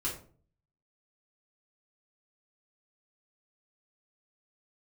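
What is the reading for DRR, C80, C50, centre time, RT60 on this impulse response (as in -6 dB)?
-6.5 dB, 12.0 dB, 7.0 dB, 28 ms, 0.45 s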